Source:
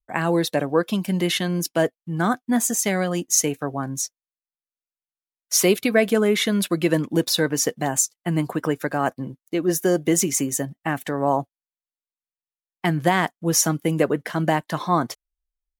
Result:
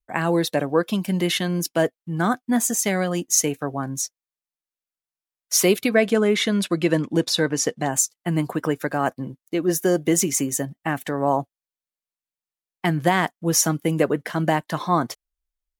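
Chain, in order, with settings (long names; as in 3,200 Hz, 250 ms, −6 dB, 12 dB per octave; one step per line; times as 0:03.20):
0:05.89–0:07.93: low-pass filter 8,500 Hz 12 dB per octave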